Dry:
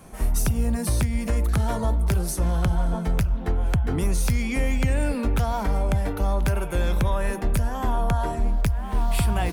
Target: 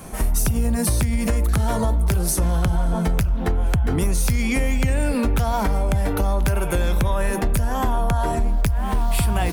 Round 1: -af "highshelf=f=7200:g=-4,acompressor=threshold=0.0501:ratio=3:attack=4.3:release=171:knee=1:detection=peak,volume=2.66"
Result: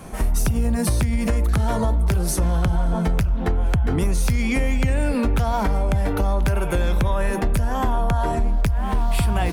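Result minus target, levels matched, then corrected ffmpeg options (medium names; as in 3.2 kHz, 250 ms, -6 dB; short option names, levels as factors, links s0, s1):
8 kHz band -4.0 dB
-af "highshelf=f=7200:g=4.5,acompressor=threshold=0.0501:ratio=3:attack=4.3:release=171:knee=1:detection=peak,volume=2.66"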